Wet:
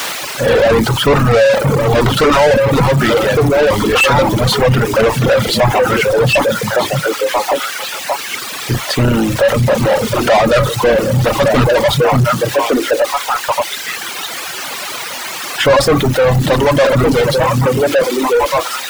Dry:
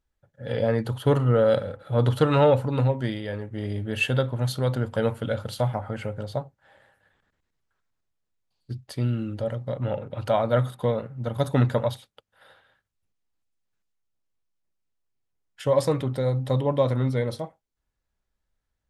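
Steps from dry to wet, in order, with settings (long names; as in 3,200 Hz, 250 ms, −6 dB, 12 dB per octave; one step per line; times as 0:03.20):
sub-octave generator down 2 octaves, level +1 dB
in parallel at −4 dB: bit-depth reduction 6 bits, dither triangular
on the sum: high-shelf EQ 3,600 Hz −7.5 dB
on a send: echo through a band-pass that steps 580 ms, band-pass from 150 Hz, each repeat 1.4 octaves, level −1 dB
on the sum: mid-hump overdrive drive 36 dB, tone 5,100 Hz, clips at −1.5 dBFS
reverb reduction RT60 1.8 s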